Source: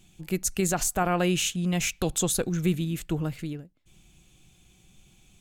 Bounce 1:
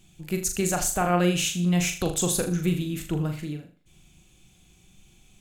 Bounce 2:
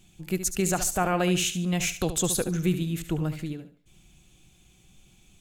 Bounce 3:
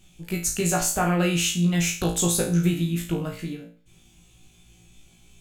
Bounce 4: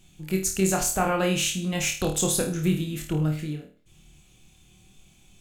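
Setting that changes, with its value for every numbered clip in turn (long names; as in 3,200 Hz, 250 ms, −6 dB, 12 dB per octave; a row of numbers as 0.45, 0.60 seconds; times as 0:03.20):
flutter between parallel walls, walls apart: 6.8, 12.3, 3, 4.5 metres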